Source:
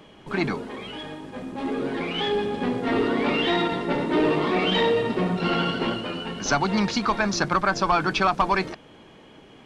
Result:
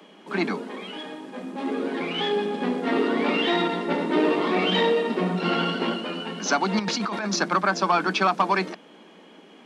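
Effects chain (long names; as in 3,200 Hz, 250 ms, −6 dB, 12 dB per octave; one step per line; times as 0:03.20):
Butterworth high-pass 170 Hz 96 dB per octave
0:06.79–0:07.36: compressor whose output falls as the input rises −27 dBFS, ratio −1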